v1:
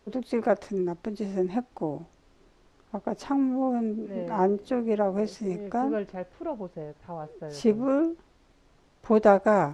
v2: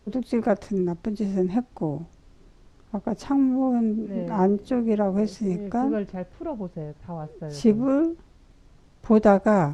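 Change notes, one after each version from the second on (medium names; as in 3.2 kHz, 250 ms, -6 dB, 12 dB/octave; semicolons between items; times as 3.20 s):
master: add tone controls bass +10 dB, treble +3 dB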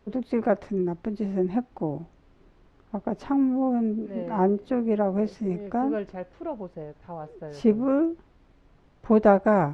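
first voice: add tone controls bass +6 dB, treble -11 dB; master: add tone controls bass -10 dB, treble -3 dB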